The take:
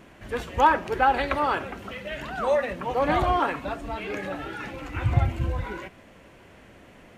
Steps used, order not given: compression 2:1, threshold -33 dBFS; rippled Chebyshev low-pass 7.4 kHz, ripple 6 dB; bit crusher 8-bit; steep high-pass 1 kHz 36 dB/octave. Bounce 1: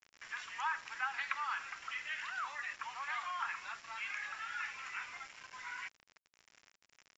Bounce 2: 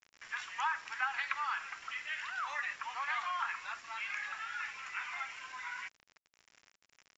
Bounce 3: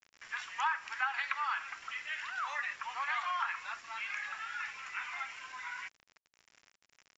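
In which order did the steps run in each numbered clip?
compression > steep high-pass > bit crusher > rippled Chebyshev low-pass; steep high-pass > compression > bit crusher > rippled Chebyshev low-pass; steep high-pass > bit crusher > rippled Chebyshev low-pass > compression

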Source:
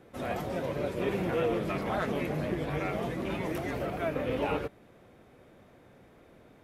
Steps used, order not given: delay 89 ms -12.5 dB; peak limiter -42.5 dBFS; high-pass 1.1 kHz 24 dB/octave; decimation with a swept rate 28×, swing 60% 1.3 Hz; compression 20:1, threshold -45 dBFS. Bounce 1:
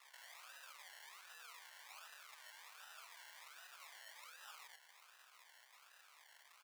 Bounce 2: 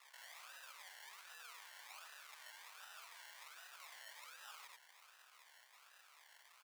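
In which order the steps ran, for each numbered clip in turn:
delay > decimation with a swept rate > peak limiter > compression > high-pass; decimation with a swept rate > delay > peak limiter > high-pass > compression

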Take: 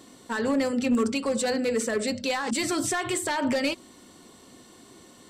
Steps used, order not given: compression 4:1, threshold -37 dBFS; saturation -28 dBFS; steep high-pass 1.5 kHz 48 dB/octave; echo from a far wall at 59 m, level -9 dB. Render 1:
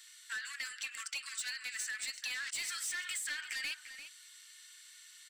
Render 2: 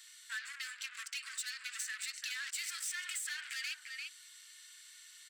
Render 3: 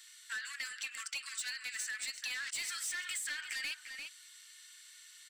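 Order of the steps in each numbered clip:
steep high-pass > saturation > compression > echo from a far wall; echo from a far wall > saturation > steep high-pass > compression; steep high-pass > saturation > echo from a far wall > compression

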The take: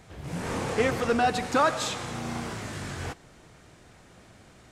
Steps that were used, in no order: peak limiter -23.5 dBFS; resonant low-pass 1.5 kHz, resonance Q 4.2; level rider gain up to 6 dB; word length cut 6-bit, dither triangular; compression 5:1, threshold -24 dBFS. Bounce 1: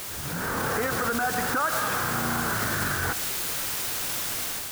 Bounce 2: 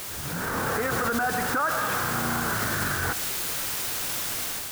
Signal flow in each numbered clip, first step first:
resonant low-pass > compression > word length cut > peak limiter > level rider; compression > resonant low-pass > word length cut > peak limiter > level rider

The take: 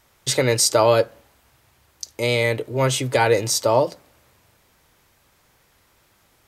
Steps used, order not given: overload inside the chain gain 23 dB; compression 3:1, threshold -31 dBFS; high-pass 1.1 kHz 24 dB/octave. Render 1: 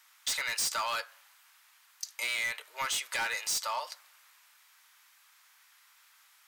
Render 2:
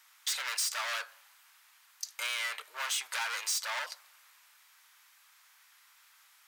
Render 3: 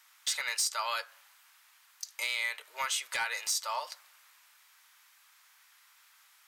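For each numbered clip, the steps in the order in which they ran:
high-pass > overload inside the chain > compression; overload inside the chain > high-pass > compression; high-pass > compression > overload inside the chain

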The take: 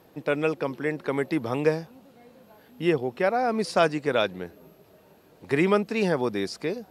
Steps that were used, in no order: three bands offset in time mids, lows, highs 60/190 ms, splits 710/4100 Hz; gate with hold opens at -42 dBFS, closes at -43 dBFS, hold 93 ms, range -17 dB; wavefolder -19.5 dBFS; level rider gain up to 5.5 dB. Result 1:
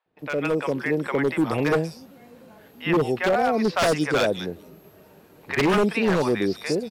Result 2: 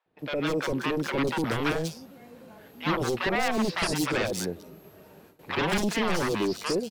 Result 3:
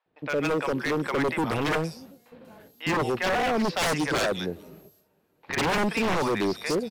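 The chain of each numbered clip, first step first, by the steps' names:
three bands offset in time > wavefolder > level rider > gate with hold; level rider > wavefolder > three bands offset in time > gate with hold; gate with hold > three bands offset in time > level rider > wavefolder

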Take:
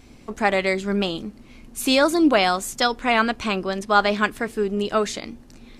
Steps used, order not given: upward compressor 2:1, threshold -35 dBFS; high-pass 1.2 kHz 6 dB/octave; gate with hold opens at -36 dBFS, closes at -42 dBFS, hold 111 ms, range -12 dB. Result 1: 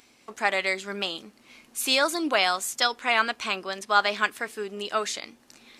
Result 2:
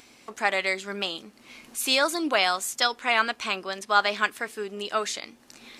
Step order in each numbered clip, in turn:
gate with hold > upward compressor > high-pass; gate with hold > high-pass > upward compressor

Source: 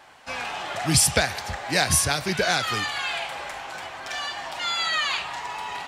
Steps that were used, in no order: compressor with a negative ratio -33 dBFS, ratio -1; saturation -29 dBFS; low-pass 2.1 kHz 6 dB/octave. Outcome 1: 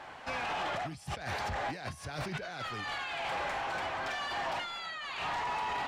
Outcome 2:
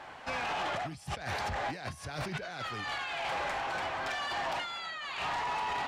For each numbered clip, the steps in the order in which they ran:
compressor with a negative ratio > saturation > low-pass; compressor with a negative ratio > low-pass > saturation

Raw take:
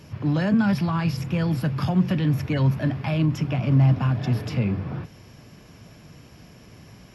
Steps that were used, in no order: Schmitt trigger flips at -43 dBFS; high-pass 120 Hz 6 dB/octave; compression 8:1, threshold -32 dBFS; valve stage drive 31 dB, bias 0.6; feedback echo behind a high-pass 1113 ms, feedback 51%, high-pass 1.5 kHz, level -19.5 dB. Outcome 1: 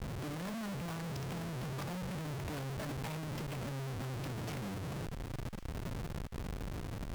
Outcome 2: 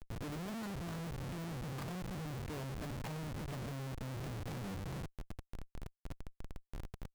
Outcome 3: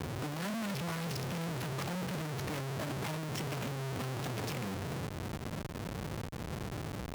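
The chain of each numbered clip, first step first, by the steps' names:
high-pass > compression > Schmitt trigger > valve stage > feedback echo behind a high-pass; compression > feedback echo behind a high-pass > valve stage > high-pass > Schmitt trigger; feedback echo behind a high-pass > Schmitt trigger > compression > valve stage > high-pass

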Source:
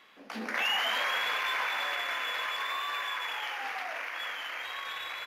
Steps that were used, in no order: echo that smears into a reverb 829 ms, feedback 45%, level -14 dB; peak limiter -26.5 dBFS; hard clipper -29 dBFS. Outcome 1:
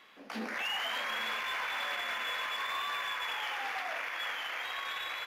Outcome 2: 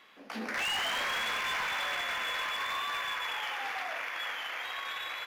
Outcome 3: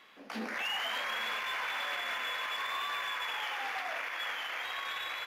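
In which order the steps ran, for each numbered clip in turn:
peak limiter > echo that smears into a reverb > hard clipper; echo that smears into a reverb > hard clipper > peak limiter; echo that smears into a reverb > peak limiter > hard clipper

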